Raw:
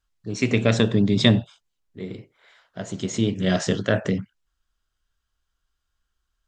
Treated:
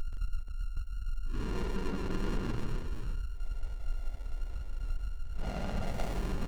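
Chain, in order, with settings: level quantiser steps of 22 dB; whine 1400 Hz -31 dBFS; Paulstretch 5.1×, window 0.05 s, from 1.7; on a send: tapped delay 0.13/0.17/0.409/0.484 s -6.5/-5.5/-19/-7 dB; on the sum: running maximum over 33 samples; gain +5 dB

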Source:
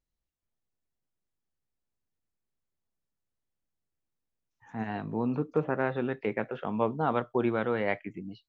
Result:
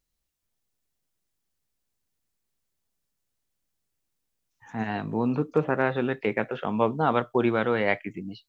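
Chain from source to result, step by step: high shelf 2700 Hz +7.5 dB; gain +4 dB

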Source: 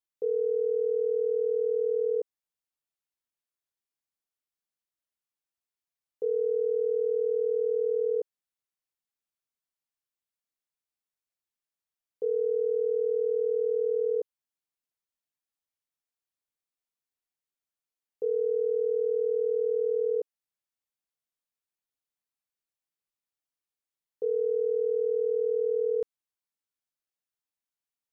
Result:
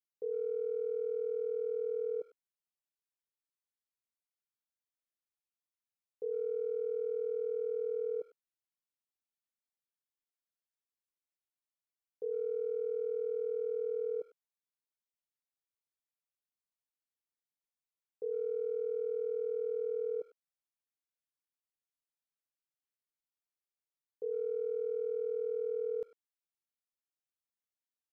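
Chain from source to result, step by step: speakerphone echo 0.1 s, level -20 dB; gain -8.5 dB

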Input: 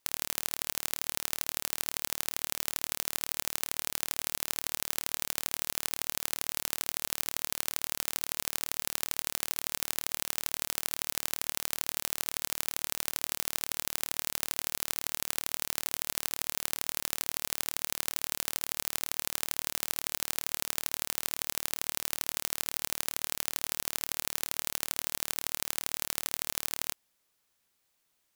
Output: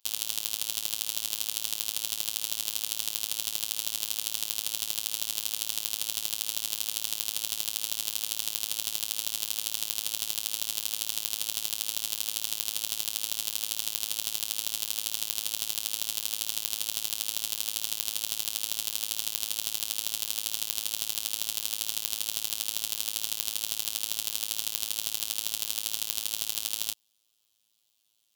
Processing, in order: HPF 49 Hz; resonant high shelf 2500 Hz +7.5 dB, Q 3; robotiser 109 Hz; gain -3.5 dB

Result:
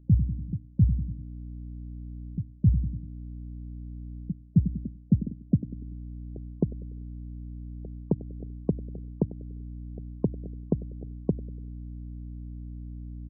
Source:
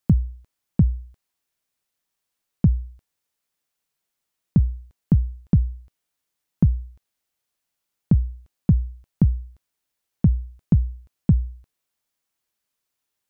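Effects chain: on a send: feedback echo 97 ms, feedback 55%, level -23.5 dB; on the sum: high-pass sweep 110 Hz -> 420 Hz, 3.3–6.77; hum 60 Hz, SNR 19 dB; pre-echo 0.264 s -22.5 dB; reverse; compressor 4:1, threshold -27 dBFS, peak gain reduction 17.5 dB; reverse; spectral gate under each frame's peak -30 dB strong; gain +6.5 dB

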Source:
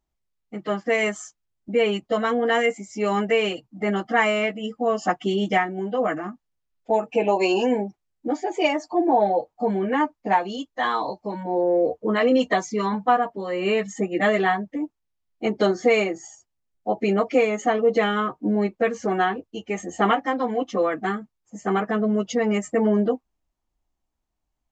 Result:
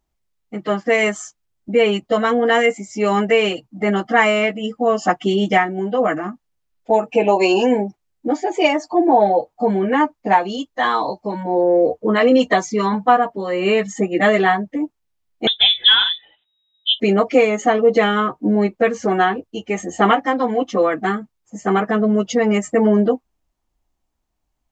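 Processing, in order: 15.47–17 inverted band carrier 3800 Hz; gain +5.5 dB

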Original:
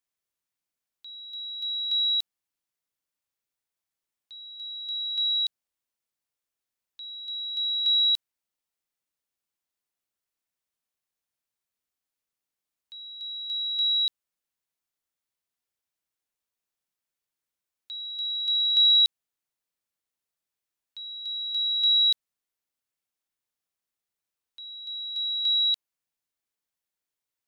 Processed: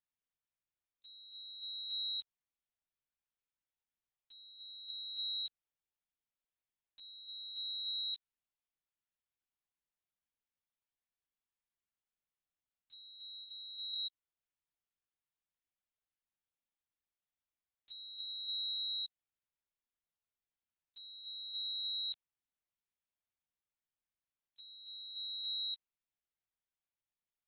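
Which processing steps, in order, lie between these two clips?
13.44–13.95 differentiator; limiter -22 dBFS, peak gain reduction 7 dB; LPC vocoder at 8 kHz pitch kept; gain -7.5 dB

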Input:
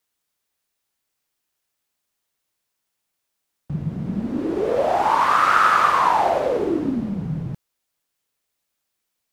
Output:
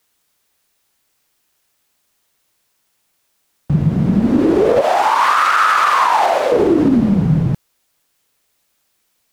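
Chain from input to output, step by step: 4.81–6.52 HPF 1200 Hz 6 dB/oct; maximiser +16.5 dB; gain -4 dB

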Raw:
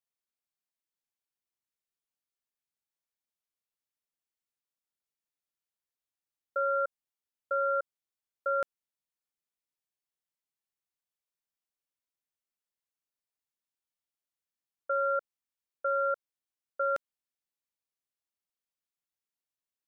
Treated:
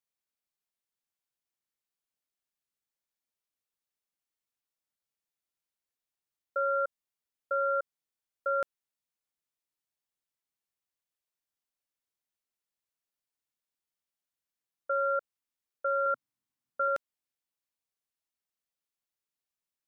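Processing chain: 16.06–16.88 graphic EQ 125/250/500/1000 Hz +11/+11/-6/+5 dB

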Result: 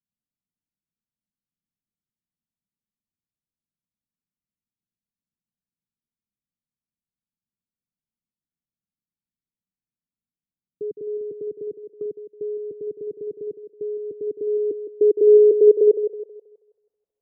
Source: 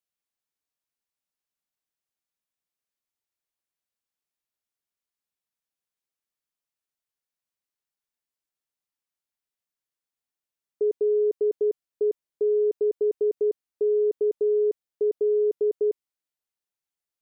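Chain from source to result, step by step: low-pass sweep 200 Hz -> 530 Hz, 14.02–15.92; thinning echo 0.161 s, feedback 61%, high-pass 630 Hz, level -4 dB; 11.21–12.06 three-band squash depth 40%; gain +5 dB

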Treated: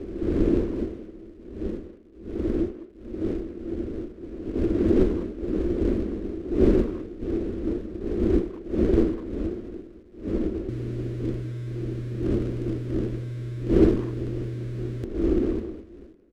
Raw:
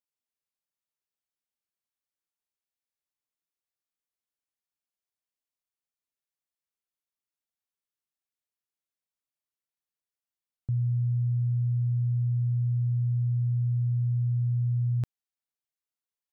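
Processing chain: wind noise 240 Hz -32 dBFS; bell 230 Hz -11 dB 0.68 oct; in parallel at -11 dB: companded quantiser 4-bit; on the sum: air absorption 68 m; fixed phaser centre 340 Hz, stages 4; small resonant body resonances 230/330 Hz, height 13 dB, ringing for 45 ms; speakerphone echo 0.2 s, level -13 dB; running maximum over 5 samples; gain +4 dB

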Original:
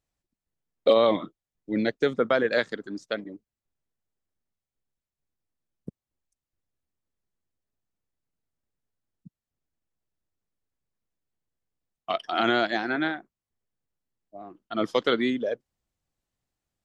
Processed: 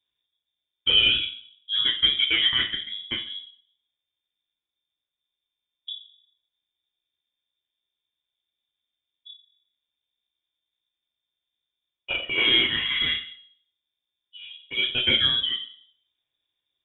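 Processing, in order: in parallel at -10 dB: hard clip -21 dBFS, distortion -8 dB; on the sum: reverb RT60 0.55 s, pre-delay 3 ms, DRR -3.5 dB; inverted band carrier 3600 Hz; gain -4 dB

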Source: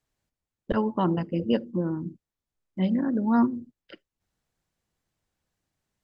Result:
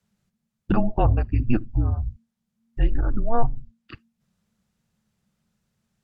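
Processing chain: low shelf 130 Hz +8 dB; treble ducked by the level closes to 2100 Hz, closed at -18 dBFS; frequency shift -230 Hz; gain +4.5 dB

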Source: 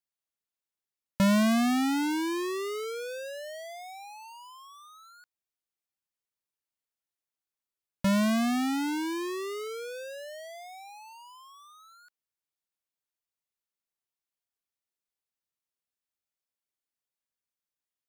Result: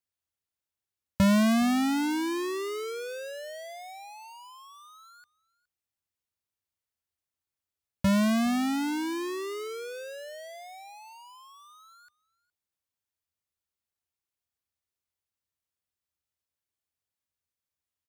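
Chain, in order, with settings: bell 83 Hz +15 dB 0.79 oct; echo 0.416 s -23.5 dB

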